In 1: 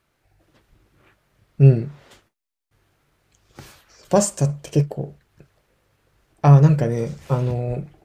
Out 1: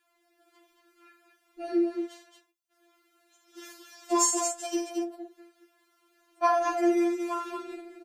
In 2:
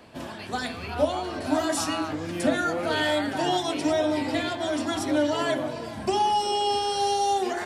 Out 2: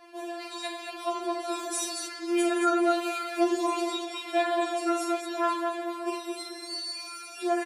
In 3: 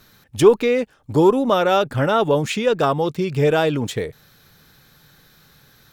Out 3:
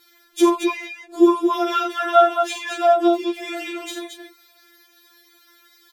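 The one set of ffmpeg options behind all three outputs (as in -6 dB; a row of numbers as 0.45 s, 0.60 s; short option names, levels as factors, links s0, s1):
-filter_complex "[0:a]highpass=f=200:p=1,asplit=2[s0][s1];[s1]aecho=0:1:43.73|78.72|224.5:0.501|0.316|0.501[s2];[s0][s2]amix=inputs=2:normalize=0,afftfilt=real='re*4*eq(mod(b,16),0)':imag='im*4*eq(mod(b,16),0)':win_size=2048:overlap=0.75"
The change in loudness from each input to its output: -9.5 LU, -3.5 LU, -1.0 LU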